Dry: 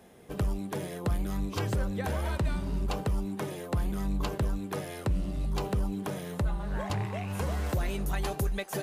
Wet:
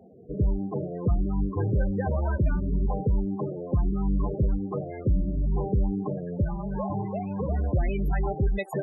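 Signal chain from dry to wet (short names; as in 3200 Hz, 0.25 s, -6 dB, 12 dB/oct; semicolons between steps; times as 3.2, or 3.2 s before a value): rattling part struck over -28 dBFS, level -44 dBFS; loudest bins only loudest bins 16; 6.44–7.49 resonant low shelf 130 Hz -7.5 dB, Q 1.5; gain +5.5 dB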